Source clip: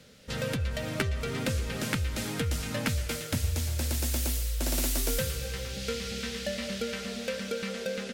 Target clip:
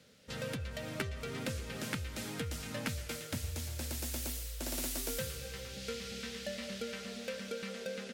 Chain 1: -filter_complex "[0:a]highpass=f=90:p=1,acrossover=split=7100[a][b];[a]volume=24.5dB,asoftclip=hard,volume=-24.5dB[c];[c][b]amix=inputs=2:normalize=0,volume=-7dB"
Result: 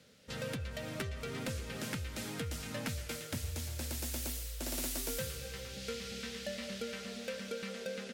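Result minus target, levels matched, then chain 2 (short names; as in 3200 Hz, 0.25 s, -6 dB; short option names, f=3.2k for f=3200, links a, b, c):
overloaded stage: distortion +20 dB
-filter_complex "[0:a]highpass=f=90:p=1,acrossover=split=7100[a][b];[a]volume=15.5dB,asoftclip=hard,volume=-15.5dB[c];[c][b]amix=inputs=2:normalize=0,volume=-7dB"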